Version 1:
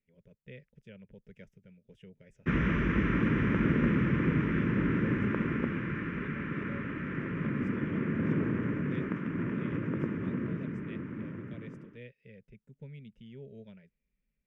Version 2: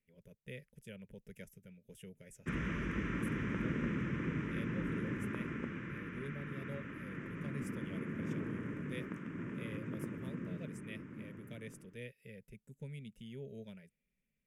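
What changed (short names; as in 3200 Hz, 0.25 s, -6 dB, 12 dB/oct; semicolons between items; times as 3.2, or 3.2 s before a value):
background -10.0 dB; master: remove air absorption 190 m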